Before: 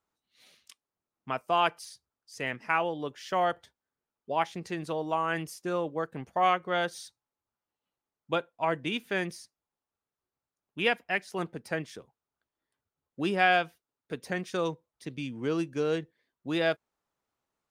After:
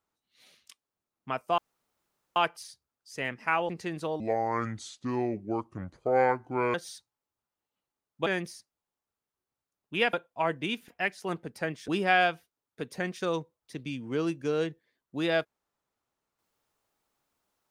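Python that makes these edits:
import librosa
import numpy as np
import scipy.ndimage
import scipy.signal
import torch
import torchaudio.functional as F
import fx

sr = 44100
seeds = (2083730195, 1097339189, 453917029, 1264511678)

y = fx.edit(x, sr, fx.insert_room_tone(at_s=1.58, length_s=0.78),
    fx.cut(start_s=2.91, length_s=1.64),
    fx.speed_span(start_s=5.06, length_s=1.78, speed=0.7),
    fx.move(start_s=8.36, length_s=0.75, to_s=10.98),
    fx.cut(start_s=11.98, length_s=1.22), tone=tone)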